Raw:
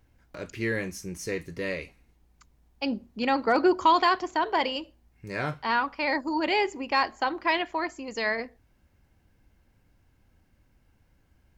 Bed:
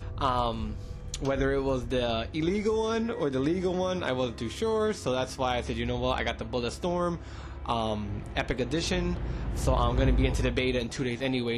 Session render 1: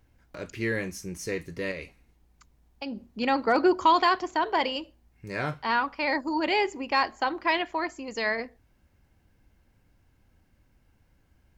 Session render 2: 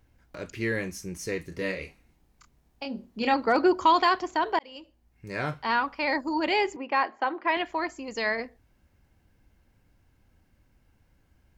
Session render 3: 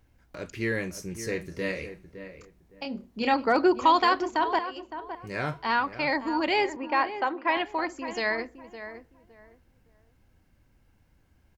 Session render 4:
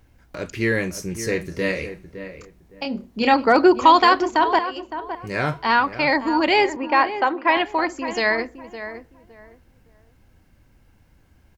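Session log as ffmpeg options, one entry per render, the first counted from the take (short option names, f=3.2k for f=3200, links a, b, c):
-filter_complex "[0:a]asettb=1/sr,asplit=3[a][b][c];[a]atrim=end=1.714[d];[b]atrim=start=1.71:end=3.09,asetpts=PTS-STARTPTS,afade=t=in:d=0.004:c=qsin,afade=t=out:st=1.376:d=0.004:c=qsin,acompressor=threshold=-31dB:ratio=6:attack=3.2:release=140:knee=1:detection=peak[e];[c]atrim=start=3.086[f];[d][e]acrossfade=d=0.004:c1=hsin:c2=qsin[g];[g][f]acrossfade=d=0.004:c1=qsin:c2=hsin"
-filter_complex "[0:a]asettb=1/sr,asplit=3[a][b][c];[a]atrim=end=1.494[d];[b]atrim=start=1.49:end=3.34,asetpts=PTS-STARTPTS,afade=t=in:d=0.004:c=qsin,afade=t=out:st=1.846:d=0.004:c=qsin,asplit=2[e][f];[f]adelay=27,volume=-4.5dB[g];[e][g]amix=inputs=2:normalize=0,atrim=end_sample=81585[h];[c]atrim=start=3.336[i];[d][h]acrossfade=d=0.004:c1=hsin:c2=qsin[j];[j][i]acrossfade=d=0.004:c1=qsin:c2=hsin,asettb=1/sr,asplit=3[k][l][m];[k]atrim=end=6.764[n];[l]atrim=start=6.76:end=7.57,asetpts=PTS-STARTPTS,afade=t=in:d=0.004:c=qsin,afade=t=out:st=0.806:d=0.004:c=qsin,highpass=250,lowpass=2.5k[o];[m]atrim=start=7.566[p];[n][o]acrossfade=d=0.004:c1=hsin:c2=qsin[q];[q][p]acrossfade=d=0.004:c1=qsin:c2=hsin,asplit=2[r][s];[r]atrim=end=4.59,asetpts=PTS-STARTPTS,afade=t=out:st=4.586:d=0.004:c=hsin[t];[s]atrim=start=4.59,asetpts=PTS-STARTPTS,afade=t=in:d=0.98:c=qsin[u];[t][u]concat=n=2:v=0:a=1"
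-filter_complex "[0:a]asplit=2[a][b];[b]adelay=562,lowpass=f=1.6k:p=1,volume=-10.5dB,asplit=2[c][d];[d]adelay=562,lowpass=f=1.6k:p=1,volume=0.24,asplit=2[e][f];[f]adelay=562,lowpass=f=1.6k:p=1,volume=0.24[g];[a][c][e][g]amix=inputs=4:normalize=0"
-af "volume=7.5dB"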